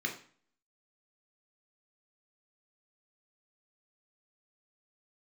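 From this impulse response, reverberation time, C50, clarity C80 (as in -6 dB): 0.45 s, 10.0 dB, 14.0 dB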